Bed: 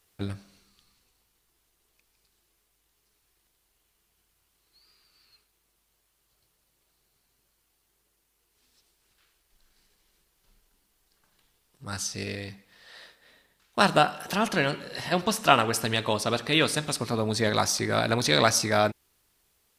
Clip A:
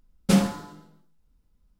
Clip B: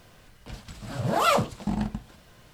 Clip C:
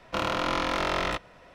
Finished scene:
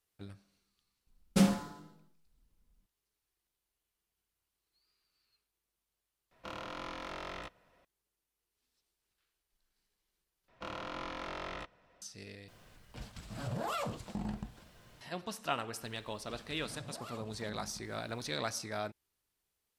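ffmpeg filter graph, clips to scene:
-filter_complex "[3:a]asplit=2[a][b];[2:a]asplit=2[c][d];[0:a]volume=-15.5dB[e];[b]highshelf=f=8.2k:g=-7.5[f];[c]acompressor=threshold=-27dB:ratio=6:attack=3.2:release=140:knee=1:detection=peak[g];[d]acompressor=threshold=-38dB:ratio=6:attack=3.2:release=140:knee=1:detection=peak[h];[e]asplit=3[i][j][k];[i]atrim=end=10.484[l];[f]atrim=end=1.54,asetpts=PTS-STARTPTS,volume=-14dB[m];[j]atrim=start=12.016:end=12.484[n];[g]atrim=end=2.53,asetpts=PTS-STARTPTS,volume=-6dB[o];[k]atrim=start=15.006[p];[1:a]atrim=end=1.79,asetpts=PTS-STARTPTS,volume=-6.5dB,afade=t=in:d=0.004:c=hsin,afade=t=out:st=1.786:d=0.004:c=hsin,adelay=1070[q];[a]atrim=end=1.54,asetpts=PTS-STARTPTS,volume=-15.5dB,afade=t=in:d=0.004:c=hsin,afade=t=out:st=1.536:d=0.004:c=hsin,adelay=6310[r];[h]atrim=end=2.53,asetpts=PTS-STARTPTS,volume=-8.5dB,afade=t=in:d=0.004:c=hsin,afade=t=out:st=2.526:d=0.004:c=hsin,adelay=15820[s];[l][m]acrossfade=d=0.004:c1=hsin:c2=hsin[t];[t][n]acrossfade=d=0.004:c1=hsin:c2=hsin[u];[u][o]acrossfade=d=0.004:c1=hsin:c2=hsin[v];[v][p]acrossfade=d=0.004:c1=hsin:c2=hsin[w];[w][q][r][s]amix=inputs=4:normalize=0"

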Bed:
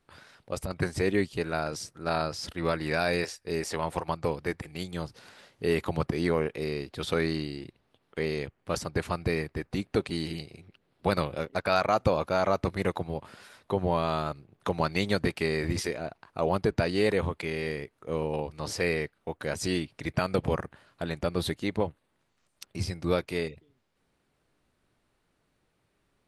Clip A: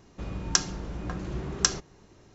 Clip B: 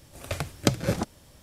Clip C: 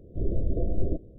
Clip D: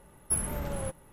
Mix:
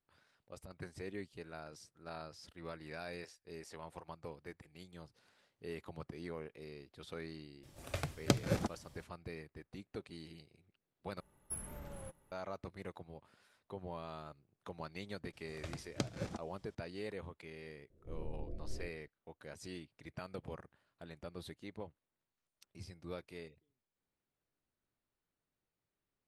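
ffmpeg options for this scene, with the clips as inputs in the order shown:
-filter_complex "[2:a]asplit=2[a][b];[0:a]volume=-18.5dB[c];[a]highshelf=f=6.4k:g=-4[d];[b]lowpass=7.8k[e];[3:a]flanger=delay=22.5:depth=5:speed=1.7[f];[c]asplit=2[g][h];[g]atrim=end=11.204[i];[4:a]atrim=end=1.12,asetpts=PTS-STARTPTS,volume=-14.5dB[j];[h]atrim=start=12.316[k];[d]atrim=end=1.42,asetpts=PTS-STARTPTS,volume=-7.5dB,afade=t=in:d=0.004:c=hsin,afade=t=out:st=1.416:d=0.004:c=hsin,adelay=7630[l];[e]atrim=end=1.42,asetpts=PTS-STARTPTS,volume=-15dB,afade=t=in:d=0.004:c=hsin,afade=t=out:st=1.416:d=0.004:c=hsin,adelay=15330[m];[f]atrim=end=1.18,asetpts=PTS-STARTPTS,volume=-16dB,afade=t=in:d=0.004:c=hsin,afade=t=out:st=1.176:d=0.004:c=hsin,adelay=17900[n];[i][j]acrossfade=d=0.004:c1=hsin:c2=hsin[o];[o][k]acrossfade=d=0.004:c1=hsin:c2=hsin[p];[p][l][m][n]amix=inputs=4:normalize=0"

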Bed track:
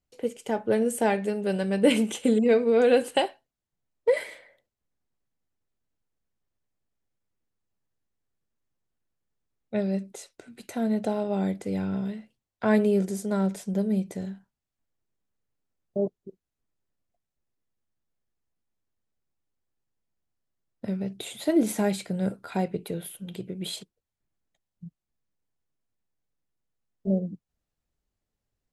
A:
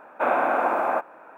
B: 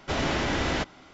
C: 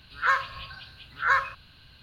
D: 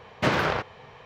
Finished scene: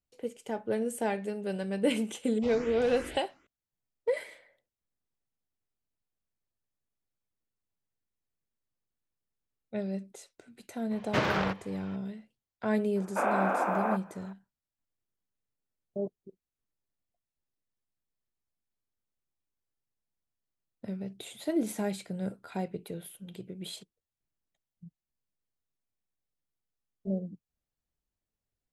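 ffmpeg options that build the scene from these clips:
-filter_complex "[0:a]volume=-7dB[a];[2:a]asplit=2[b][c];[c]afreqshift=2.6[d];[b][d]amix=inputs=2:normalize=1,atrim=end=1.13,asetpts=PTS-STARTPTS,volume=-13dB,afade=t=in:d=0.004:c=hsin,afade=t=out:st=1.126:d=0.004:c=hsin,adelay=2340[e];[4:a]atrim=end=1.05,asetpts=PTS-STARTPTS,volume=-5dB,afade=t=in:d=0.004:c=hsin,afade=t=out:st=1.046:d=0.004:c=hsin,adelay=10910[f];[1:a]atrim=end=1.37,asetpts=PTS-STARTPTS,volume=-6.5dB,afade=t=in:d=0.004:c=hsin,afade=t=out:st=1.366:d=0.004:c=hsin,adelay=12960[g];[a][e][f][g]amix=inputs=4:normalize=0"

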